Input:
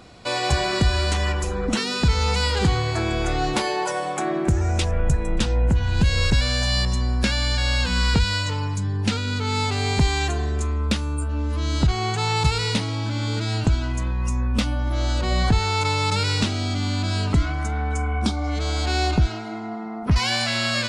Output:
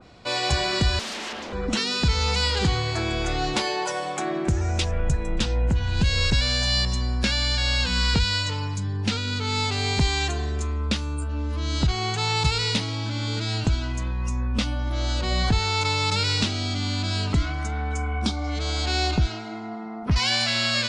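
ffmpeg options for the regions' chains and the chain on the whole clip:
-filter_complex "[0:a]asettb=1/sr,asplit=3[a][b][c];[a]atrim=end=0.994[d];[b]atrim=start=0.99:end=1.53,asetpts=PTS-STARTPTS,afade=t=in:d=0.004:c=qsin,afade=t=out:st=0.536:d=0.004:c=qsin,lowpass=f=4.7k:w=0.5412,lowpass=f=4.7k:w=1.3066,aeval=exprs='0.0447*(abs(mod(val(0)/0.0447+3,4)-2)-1)':c=same,lowshelf=f=160:t=q:w=1.5:g=-11.5[e];[c]atrim=start=1.526[f];[d][e]acrossfade=d=0.004:c1=hsin:c2=qsin[g];[g][f]acrossfade=d=0.004:c1=qsin:c2=hsin,lowpass=6.7k,adynamicequalizer=threshold=0.0126:dfrequency=2400:dqfactor=0.7:tfrequency=2400:tqfactor=0.7:attack=5:release=100:ratio=0.375:range=3:mode=boostabove:tftype=highshelf,volume=-3dB"

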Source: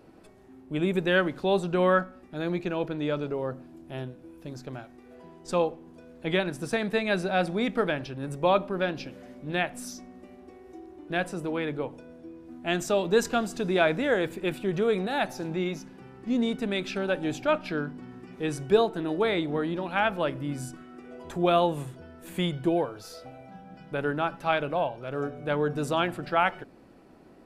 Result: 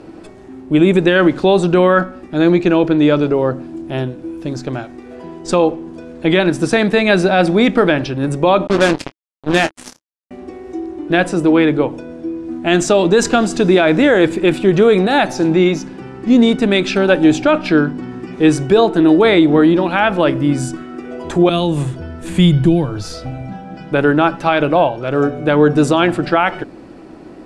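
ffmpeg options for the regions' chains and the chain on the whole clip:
-filter_complex "[0:a]asettb=1/sr,asplit=3[a][b][c];[a]atrim=end=8.674[d];[b]atrim=start=8.67:end=10.31,asetpts=PTS-STARTPTS,afade=t=in:d=0.004:c=qsin,afade=t=out:st=1.636:d=0.004:c=qsin,acrusher=bits=4:mix=0:aa=0.5,asplit=2[e][f];[f]adelay=24,volume=-14dB[g];[e][g]amix=inputs=2:normalize=0,atrim=end_sample=72324[h];[c]atrim=start=10.306[i];[d][h]acrossfade=d=0.004:c1=hsin:c2=qsin[j];[j][i]acrossfade=d=0.004:c1=qsin:c2=hsin,asettb=1/sr,asplit=3[k][l][m];[k]atrim=end=21.494[n];[l]atrim=start=21.49:end=23.54,asetpts=PTS-STARTPTS,afade=t=in:d=0.004:c=qsin,afade=t=out:st=2.046:d=0.004:c=qsin,asubboost=boost=9:cutoff=180,acrossover=split=260|3000[o][p][q];[p]acompressor=threshold=-40dB:ratio=2.5:attack=3.2:release=140:knee=2.83:detection=peak[r];[o][r][q]amix=inputs=3:normalize=0[s];[m]atrim=start=23.536[t];[n][s]acrossfade=d=0.004:c1=hsin:c2=qsin[u];[u][t]acrossfade=d=0.004:c1=qsin:c2=hsin,lowpass=f=9.3k:w=0.5412,lowpass=f=9.3k:w=1.3066,equalizer=f=320:w=5.1:g=7,alimiter=level_in=16dB:limit=-1dB:release=50:level=0:latency=1,volume=-1dB"

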